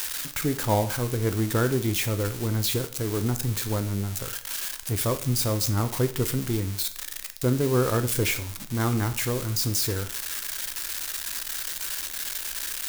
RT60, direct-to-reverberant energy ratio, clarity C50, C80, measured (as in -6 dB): 0.50 s, 9.0 dB, 14.0 dB, 17.5 dB